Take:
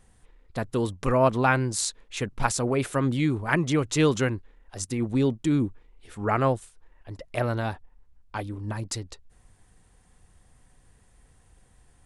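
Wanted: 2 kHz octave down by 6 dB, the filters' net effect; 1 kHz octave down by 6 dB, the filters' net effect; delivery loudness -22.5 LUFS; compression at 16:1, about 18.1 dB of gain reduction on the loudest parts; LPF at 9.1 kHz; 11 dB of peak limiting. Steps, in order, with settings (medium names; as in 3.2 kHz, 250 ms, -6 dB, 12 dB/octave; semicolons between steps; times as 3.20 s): low-pass 9.1 kHz; peaking EQ 1 kHz -6.5 dB; peaking EQ 2 kHz -5.5 dB; compression 16:1, threshold -37 dBFS; trim +22 dB; peak limiter -11.5 dBFS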